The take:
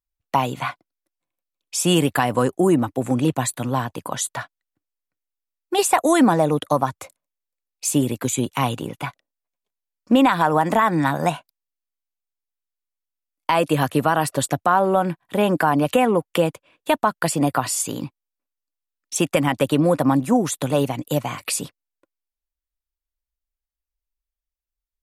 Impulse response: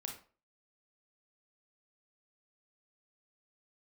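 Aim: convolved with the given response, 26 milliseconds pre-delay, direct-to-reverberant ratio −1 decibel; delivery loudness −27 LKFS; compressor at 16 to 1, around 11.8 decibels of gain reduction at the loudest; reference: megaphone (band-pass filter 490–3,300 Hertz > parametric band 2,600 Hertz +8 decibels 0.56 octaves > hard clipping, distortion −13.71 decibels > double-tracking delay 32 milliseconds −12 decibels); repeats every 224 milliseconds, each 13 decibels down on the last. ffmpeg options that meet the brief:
-filter_complex "[0:a]acompressor=threshold=-23dB:ratio=16,aecho=1:1:224|448|672:0.224|0.0493|0.0108,asplit=2[link_01][link_02];[1:a]atrim=start_sample=2205,adelay=26[link_03];[link_02][link_03]afir=irnorm=-1:irlink=0,volume=3dB[link_04];[link_01][link_04]amix=inputs=2:normalize=0,highpass=490,lowpass=3300,equalizer=frequency=2600:width_type=o:width=0.56:gain=8,asoftclip=type=hard:threshold=-21.5dB,asplit=2[link_05][link_06];[link_06]adelay=32,volume=-12dB[link_07];[link_05][link_07]amix=inputs=2:normalize=0,volume=2.5dB"

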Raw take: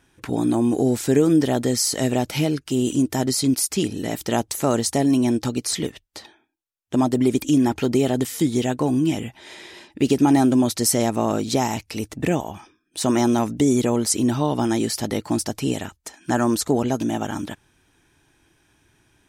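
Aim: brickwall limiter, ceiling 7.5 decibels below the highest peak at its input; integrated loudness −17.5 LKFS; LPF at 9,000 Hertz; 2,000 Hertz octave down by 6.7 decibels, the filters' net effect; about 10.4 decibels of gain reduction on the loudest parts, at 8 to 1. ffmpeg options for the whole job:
ffmpeg -i in.wav -af "lowpass=9000,equalizer=frequency=2000:width_type=o:gain=-8.5,acompressor=threshold=-24dB:ratio=8,volume=13dB,alimiter=limit=-6.5dB:level=0:latency=1" out.wav

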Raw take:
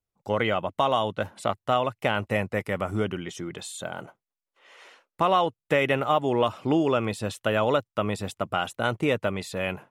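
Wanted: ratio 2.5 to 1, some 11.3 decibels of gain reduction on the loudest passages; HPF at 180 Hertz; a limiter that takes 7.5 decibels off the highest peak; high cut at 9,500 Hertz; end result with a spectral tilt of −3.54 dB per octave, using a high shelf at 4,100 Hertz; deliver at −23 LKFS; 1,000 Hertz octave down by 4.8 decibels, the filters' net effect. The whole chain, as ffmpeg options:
ffmpeg -i in.wav -af "highpass=180,lowpass=9500,equalizer=frequency=1000:width_type=o:gain=-7,highshelf=frequency=4100:gain=6.5,acompressor=threshold=-37dB:ratio=2.5,volume=16dB,alimiter=limit=-9.5dB:level=0:latency=1" out.wav

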